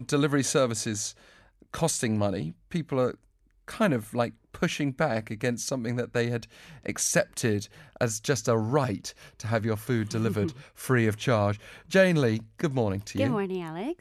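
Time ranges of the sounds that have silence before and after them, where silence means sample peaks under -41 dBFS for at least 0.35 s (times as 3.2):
1.62–3.14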